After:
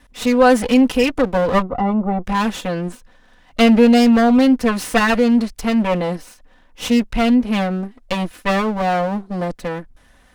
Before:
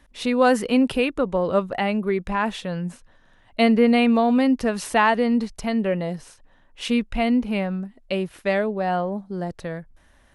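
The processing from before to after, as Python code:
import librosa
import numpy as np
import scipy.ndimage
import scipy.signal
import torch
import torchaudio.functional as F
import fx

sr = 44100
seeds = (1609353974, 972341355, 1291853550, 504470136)

p1 = fx.lower_of_two(x, sr, delay_ms=4.0)
p2 = 10.0 ** (-15.5 / 20.0) * np.tanh(p1 / 10.0 ** (-15.5 / 20.0))
p3 = p1 + (p2 * 10.0 ** (-8.0 / 20.0))
p4 = fx.savgol(p3, sr, points=65, at=(1.62, 2.24))
y = p4 * 10.0 ** (3.5 / 20.0)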